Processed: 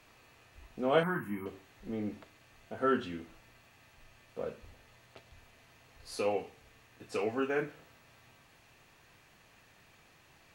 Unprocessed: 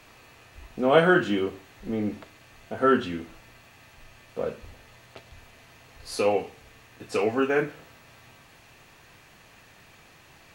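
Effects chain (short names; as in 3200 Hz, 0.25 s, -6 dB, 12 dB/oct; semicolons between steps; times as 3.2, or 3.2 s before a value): 1.03–1.46 EQ curve 220 Hz 0 dB, 590 Hz -19 dB, 1000 Hz +7 dB, 1400 Hz -8 dB, 2100 Hz 0 dB, 3400 Hz -28 dB, 7000 Hz -14 dB, 11000 Hz +14 dB; gain -8.5 dB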